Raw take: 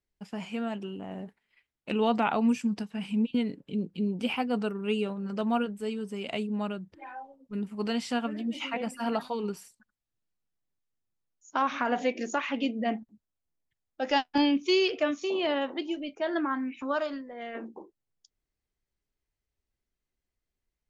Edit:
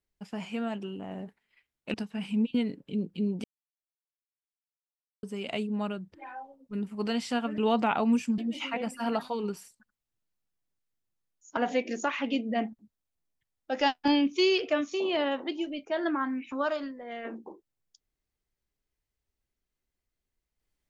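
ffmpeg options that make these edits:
ffmpeg -i in.wav -filter_complex "[0:a]asplit=7[link_01][link_02][link_03][link_04][link_05][link_06][link_07];[link_01]atrim=end=1.942[link_08];[link_02]atrim=start=2.738:end=4.24,asetpts=PTS-STARTPTS,afade=type=out:start_time=1.498:duration=0.004:curve=hsin[link_09];[link_03]atrim=start=4.24:end=6.03,asetpts=PTS-STARTPTS,volume=0[link_10];[link_04]atrim=start=6.03:end=8.382,asetpts=PTS-STARTPTS,afade=type=in:duration=0.004:curve=hsin[link_11];[link_05]atrim=start=1.938:end=2.742[link_12];[link_06]atrim=start=8.378:end=11.572[link_13];[link_07]atrim=start=11.868[link_14];[link_09][link_10][link_11]concat=n=3:v=0:a=1[link_15];[link_08][link_15]acrossfade=duration=0.004:curve1=hsin:curve2=hsin[link_16];[link_16][link_12]acrossfade=duration=0.004:curve1=hsin:curve2=hsin[link_17];[link_17][link_13]acrossfade=duration=0.004:curve1=hsin:curve2=hsin[link_18];[link_18][link_14]acrossfade=duration=0.004:curve1=hsin:curve2=hsin" out.wav

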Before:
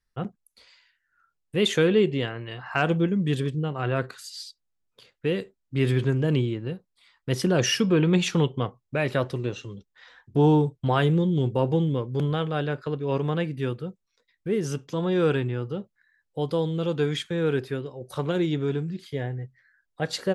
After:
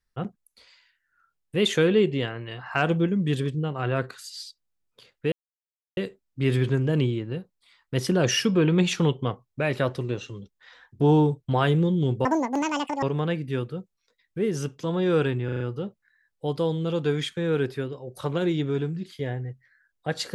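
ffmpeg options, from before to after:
ffmpeg -i in.wav -filter_complex "[0:a]asplit=8[link_01][link_02][link_03][link_04][link_05][link_06][link_07][link_08];[link_01]atrim=end=5.32,asetpts=PTS-STARTPTS,afade=type=out:start_time=5.316:duration=0.004:curve=hsin,apad=pad_dur=0.65[link_09];[link_02]atrim=start=5.32:end=11.604,asetpts=PTS-STARTPTS,afade=type=in:duration=0.004:curve=hsin[link_10];[link_03]atrim=start=11.6:end=13.12,asetpts=PTS-STARTPTS,asetrate=86436,aresample=44100[link_11];[link_04]atrim=start=13.116:end=15.582[link_12];[link_05]atrim=start=15.538:end=15.582[link_13];[link_06]atrim=start=15.538:end=15.582[link_14];[link_07]atrim=start=15.538:end=15.582[link_15];[link_08]atrim=start=15.538[link_16];[link_09][link_10]concat=n=2:v=0:a=1[link_17];[link_17][link_11]acrossfade=duration=0.004:curve1=hsin:curve2=hsin[link_18];[link_18][link_12]acrossfade=duration=0.004:curve1=hsin:curve2=hsin[link_19];[link_19][link_13]acrossfade=duration=0.004:curve1=hsin:curve2=hsin[link_20];[link_20][link_14]acrossfade=duration=0.004:curve1=hsin:curve2=hsin[link_21];[link_21][link_15]acrossfade=duration=0.004:curve1=hsin:curve2=hsin[link_22];[link_22][link_16]acrossfade=duration=0.004:curve1=hsin:curve2=hsin" out.wav

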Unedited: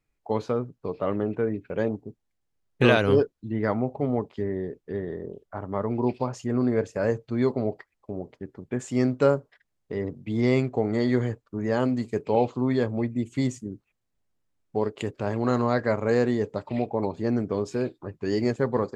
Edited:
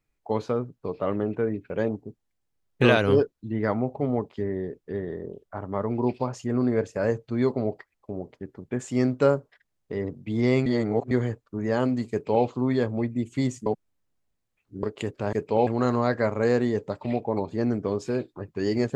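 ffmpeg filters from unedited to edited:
ffmpeg -i in.wav -filter_complex "[0:a]asplit=7[link_01][link_02][link_03][link_04][link_05][link_06][link_07];[link_01]atrim=end=10.662[link_08];[link_02]atrim=start=10.658:end=11.112,asetpts=PTS-STARTPTS,areverse[link_09];[link_03]atrim=start=11.108:end=13.662[link_10];[link_04]atrim=start=13.658:end=14.832,asetpts=PTS-STARTPTS,areverse[link_11];[link_05]atrim=start=14.828:end=15.332[link_12];[link_06]atrim=start=12.108:end=12.452[link_13];[link_07]atrim=start=15.328[link_14];[link_08][link_09]acrossfade=duration=0.004:curve1=hsin:curve2=hsin[link_15];[link_15][link_10]acrossfade=duration=0.004:curve1=hsin:curve2=hsin[link_16];[link_16][link_11]acrossfade=duration=0.004:curve1=hsin:curve2=hsin[link_17];[link_17][link_12]acrossfade=duration=0.004:curve1=hsin:curve2=hsin[link_18];[link_18][link_13]acrossfade=duration=0.004:curve1=hsin:curve2=hsin[link_19];[link_19][link_14]acrossfade=duration=0.004:curve1=hsin:curve2=hsin" out.wav

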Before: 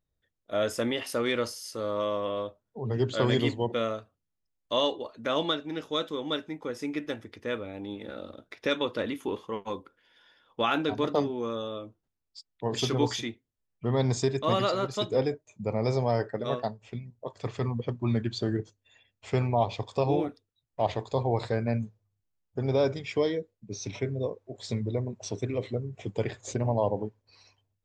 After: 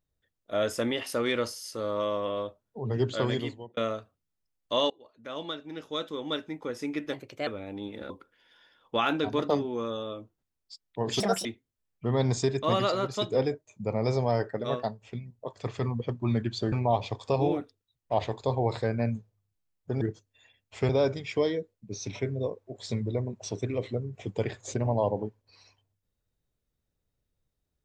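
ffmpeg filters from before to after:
ffmpeg -i in.wav -filter_complex "[0:a]asplit=11[link_01][link_02][link_03][link_04][link_05][link_06][link_07][link_08][link_09][link_10][link_11];[link_01]atrim=end=3.77,asetpts=PTS-STARTPTS,afade=type=out:start_time=3.05:duration=0.72[link_12];[link_02]atrim=start=3.77:end=4.9,asetpts=PTS-STARTPTS,afade=type=in:duration=0.004:curve=hsin,afade=type=out:start_time=1.126:duration=0.004:curve=hsin:silence=0.0707946[link_13];[link_03]atrim=start=4.9:end=7.134,asetpts=PTS-STARTPTS,afade=type=in:duration=1.62:silence=0.0707946[link_14];[link_04]atrim=start=7.13:end=7.54,asetpts=PTS-STARTPTS,asetrate=53361,aresample=44100[link_15];[link_05]atrim=start=7.536:end=8.172[link_16];[link_06]atrim=start=9.748:end=12.854[link_17];[link_07]atrim=start=12.85:end=13.25,asetpts=PTS-STARTPTS,asetrate=69678,aresample=44100[link_18];[link_08]atrim=start=13.246:end=18.522[link_19];[link_09]atrim=start=19.398:end=22.692[link_20];[link_10]atrim=start=18.518:end=19.402[link_21];[link_11]atrim=start=22.688[link_22];[link_12][link_13][link_14]concat=n=3:v=0:a=1[link_23];[link_23][link_15]acrossfade=duration=0.004:curve1=hsin:curve2=hsin[link_24];[link_24][link_16]acrossfade=duration=0.004:curve1=hsin:curve2=hsin[link_25];[link_25][link_17]acrossfade=duration=0.004:curve1=hsin:curve2=hsin[link_26];[link_26][link_18]acrossfade=duration=0.004:curve1=hsin:curve2=hsin[link_27];[link_27][link_19]acrossfade=duration=0.004:curve1=hsin:curve2=hsin[link_28];[link_28][link_20]acrossfade=duration=0.004:curve1=hsin:curve2=hsin[link_29];[link_29][link_21]acrossfade=duration=0.004:curve1=hsin:curve2=hsin[link_30];[link_30][link_22]acrossfade=duration=0.004:curve1=hsin:curve2=hsin" out.wav

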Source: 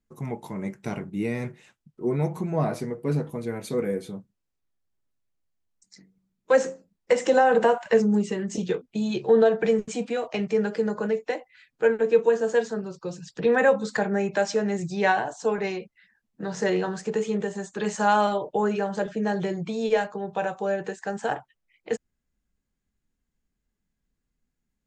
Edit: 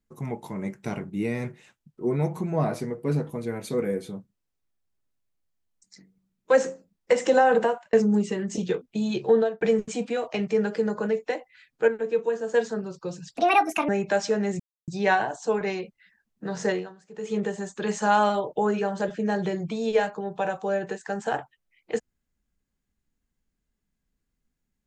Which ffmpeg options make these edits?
ffmpeg -i in.wav -filter_complex "[0:a]asplit=10[link_01][link_02][link_03][link_04][link_05][link_06][link_07][link_08][link_09][link_10];[link_01]atrim=end=7.93,asetpts=PTS-STARTPTS,afade=type=out:start_time=7.53:duration=0.4[link_11];[link_02]atrim=start=7.93:end=9.61,asetpts=PTS-STARTPTS,afade=type=in:duration=0.004:curve=hsin,afade=type=out:start_time=1.37:duration=0.31[link_12];[link_03]atrim=start=9.61:end=11.882,asetpts=PTS-STARTPTS,afade=type=in:duration=0.004:curve=hsin[link_13];[link_04]atrim=start=11.878:end=12.542,asetpts=PTS-STARTPTS,volume=-5.5dB[link_14];[link_05]atrim=start=12.538:end=13.374[link_15];[link_06]atrim=start=13.37:end=14.14,asetpts=PTS-STARTPTS,asetrate=65709,aresample=44100[link_16];[link_07]atrim=start=14.136:end=14.85,asetpts=PTS-STARTPTS,afade=type=out:start_time=0.71:duration=0.004:curve=hsin,apad=pad_dur=0.28[link_17];[link_08]atrim=start=14.85:end=16.96,asetpts=PTS-STARTPTS,afade=type=in:duration=0.004:curve=hsin,afade=type=out:start_time=1.81:duration=0.3:curve=qua:silence=0.0841395[link_18];[link_09]atrim=start=16.96:end=17.02,asetpts=PTS-STARTPTS,volume=-21.5dB[link_19];[link_10]atrim=start=17.02,asetpts=PTS-STARTPTS,afade=type=in:duration=0.3:curve=qua:silence=0.0841395[link_20];[link_11][link_12][link_13]concat=n=3:v=0:a=1[link_21];[link_21][link_14]acrossfade=duration=0.004:curve1=hsin:curve2=hsin[link_22];[link_22][link_15]acrossfade=duration=0.004:curve1=hsin:curve2=hsin[link_23];[link_23][link_16]acrossfade=duration=0.004:curve1=hsin:curve2=hsin[link_24];[link_17][link_18][link_19][link_20]concat=n=4:v=0:a=1[link_25];[link_24][link_25]acrossfade=duration=0.004:curve1=hsin:curve2=hsin" out.wav

